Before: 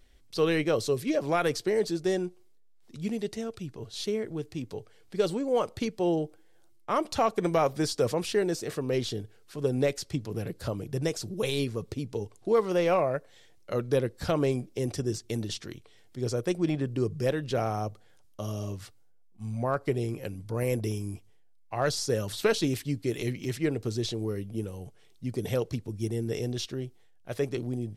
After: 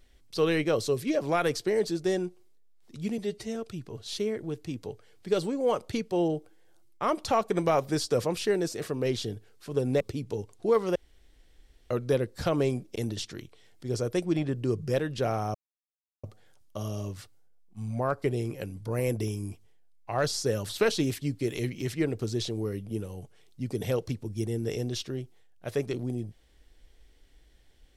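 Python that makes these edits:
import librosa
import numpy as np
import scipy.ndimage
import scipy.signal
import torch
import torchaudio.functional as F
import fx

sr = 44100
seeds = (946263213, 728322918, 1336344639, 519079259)

y = fx.edit(x, sr, fx.stretch_span(start_s=3.18, length_s=0.25, factor=1.5),
    fx.cut(start_s=9.88, length_s=1.95),
    fx.room_tone_fill(start_s=12.78, length_s=0.95),
    fx.cut(start_s=14.78, length_s=0.5),
    fx.insert_silence(at_s=17.87, length_s=0.69), tone=tone)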